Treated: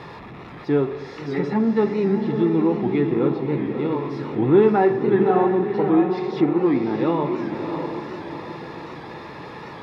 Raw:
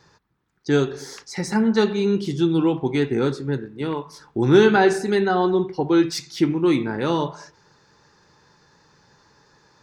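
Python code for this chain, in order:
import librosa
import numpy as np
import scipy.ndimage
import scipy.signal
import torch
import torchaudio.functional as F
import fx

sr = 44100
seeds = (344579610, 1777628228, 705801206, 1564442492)

y = x + 0.5 * 10.0 ** (-28.5 / 20.0) * np.sign(x)
y = fx.env_lowpass_down(y, sr, base_hz=2300.0, full_db=-14.5)
y = fx.air_absorb(y, sr, metres=370.0)
y = fx.notch_comb(y, sr, f0_hz=1500.0)
y = fx.echo_diffused(y, sr, ms=636, feedback_pct=44, wet_db=-5.5)
y = fx.record_warp(y, sr, rpm=78.0, depth_cents=100.0)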